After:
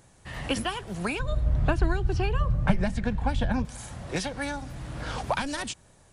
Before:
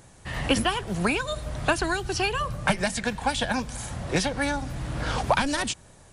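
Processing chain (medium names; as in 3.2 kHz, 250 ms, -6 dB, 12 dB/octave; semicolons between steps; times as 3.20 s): 1.19–3.65 s: RIAA curve playback; trim -5.5 dB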